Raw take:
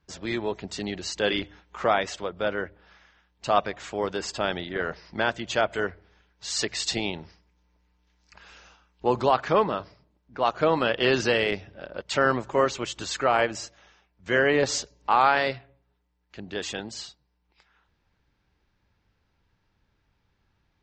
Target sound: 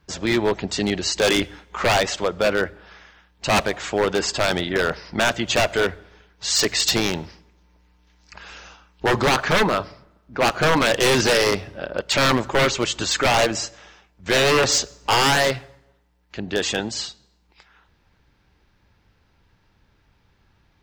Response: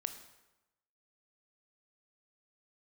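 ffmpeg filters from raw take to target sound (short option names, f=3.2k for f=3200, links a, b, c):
-filter_complex "[0:a]aeval=exprs='0.0891*(abs(mod(val(0)/0.0891+3,4)-2)-1)':c=same,asplit=2[a][b];[1:a]atrim=start_sample=2205[c];[b][c]afir=irnorm=-1:irlink=0,volume=-12.5dB[d];[a][d]amix=inputs=2:normalize=0,volume=8dB"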